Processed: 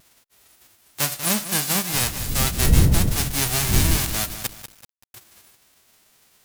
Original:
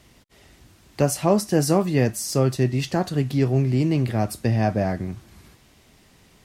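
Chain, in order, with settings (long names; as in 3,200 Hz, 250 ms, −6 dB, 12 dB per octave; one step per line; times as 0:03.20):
spectral envelope flattened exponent 0.1
0:01.92–0:03.96: wind on the microphone 110 Hz −17 dBFS
pitch vibrato 0.32 Hz 7.7 cents
0:04.47–0:05.14: silence
feedback echo at a low word length 191 ms, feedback 55%, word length 5 bits, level −10 dB
level −3.5 dB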